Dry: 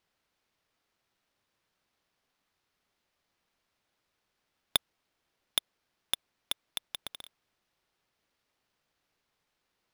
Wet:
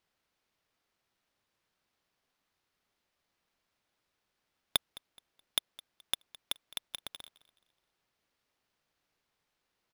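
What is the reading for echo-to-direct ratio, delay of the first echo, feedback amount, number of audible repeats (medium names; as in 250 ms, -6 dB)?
-19.5 dB, 212 ms, 32%, 2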